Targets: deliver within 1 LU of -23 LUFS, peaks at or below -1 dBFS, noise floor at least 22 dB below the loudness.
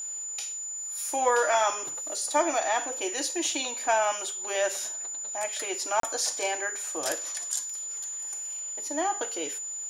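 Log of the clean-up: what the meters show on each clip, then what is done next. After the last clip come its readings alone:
dropouts 1; longest dropout 33 ms; steady tone 7000 Hz; tone level -33 dBFS; loudness -28.5 LUFS; peak -11.0 dBFS; loudness target -23.0 LUFS
-> interpolate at 6, 33 ms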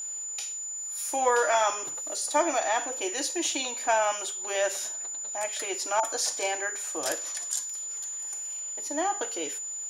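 dropouts 0; steady tone 7000 Hz; tone level -33 dBFS
-> notch 7000 Hz, Q 30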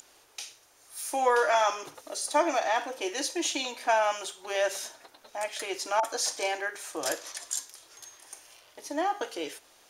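steady tone none; loudness -29.5 LUFS; peak -11.5 dBFS; loudness target -23.0 LUFS
-> gain +6.5 dB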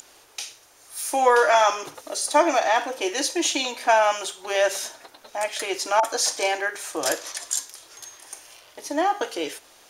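loudness -23.0 LUFS; peak -5.0 dBFS; noise floor -53 dBFS

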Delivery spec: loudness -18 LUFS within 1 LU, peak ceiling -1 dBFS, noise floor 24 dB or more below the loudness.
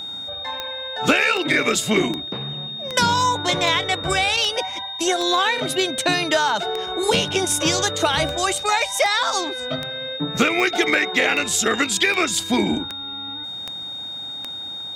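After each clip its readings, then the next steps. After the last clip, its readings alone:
clicks 19; steady tone 3700 Hz; tone level -29 dBFS; loudness -20.5 LUFS; peak -3.5 dBFS; loudness target -18.0 LUFS
-> de-click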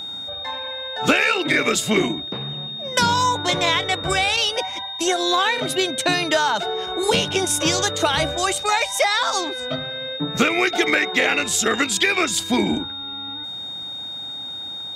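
clicks 0; steady tone 3700 Hz; tone level -29 dBFS
-> notch 3700 Hz, Q 30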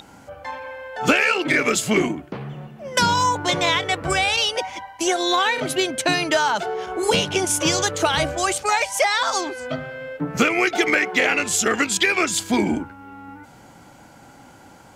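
steady tone none; loudness -20.0 LUFS; peak -3.5 dBFS; loudness target -18.0 LUFS
-> gain +2 dB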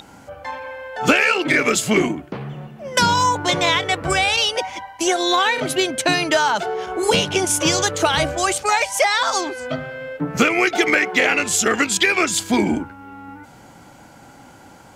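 loudness -18.0 LUFS; peak -1.5 dBFS; noise floor -45 dBFS

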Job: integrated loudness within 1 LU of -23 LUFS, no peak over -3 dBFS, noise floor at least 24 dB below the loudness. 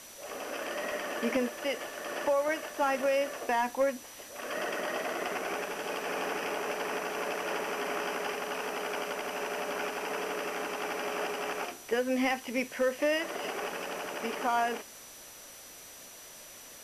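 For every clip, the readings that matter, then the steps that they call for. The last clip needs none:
steady tone 5900 Hz; tone level -53 dBFS; noise floor -49 dBFS; noise floor target -57 dBFS; loudness -33.0 LUFS; peak -18.5 dBFS; loudness target -23.0 LUFS
-> notch 5900 Hz, Q 30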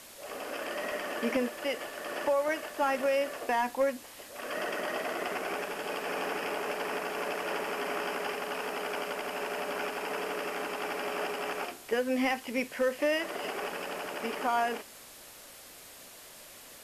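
steady tone none; noise floor -50 dBFS; noise floor target -57 dBFS
-> denoiser 7 dB, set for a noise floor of -50 dBFS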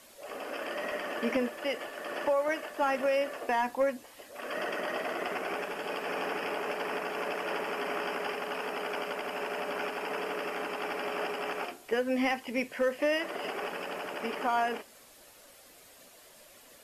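noise floor -56 dBFS; noise floor target -57 dBFS
-> denoiser 6 dB, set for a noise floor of -56 dBFS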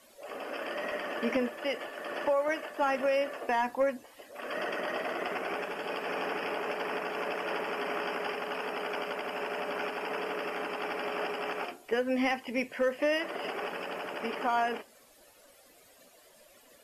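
noise floor -59 dBFS; loudness -33.0 LUFS; peak -19.0 dBFS; loudness target -23.0 LUFS
-> gain +10 dB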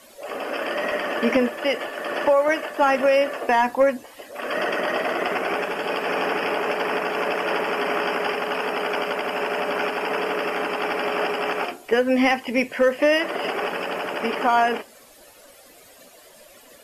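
loudness -23.0 LUFS; peak -9.0 dBFS; noise floor -49 dBFS

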